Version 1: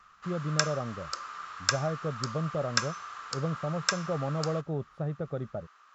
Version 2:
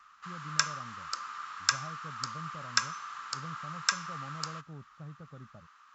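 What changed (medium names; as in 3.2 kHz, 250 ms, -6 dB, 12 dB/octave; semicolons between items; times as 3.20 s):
speech -12.0 dB; master: add high-order bell 500 Hz -9 dB 1.3 oct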